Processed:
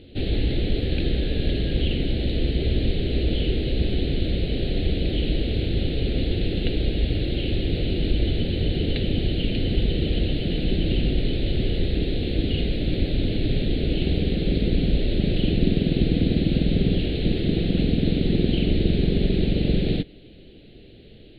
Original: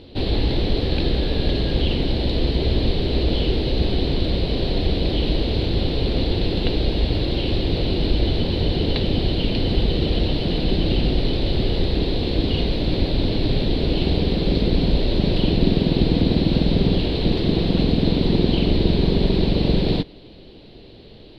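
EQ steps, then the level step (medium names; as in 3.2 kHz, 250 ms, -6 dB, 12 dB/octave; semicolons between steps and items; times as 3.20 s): static phaser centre 2.4 kHz, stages 4; -2.0 dB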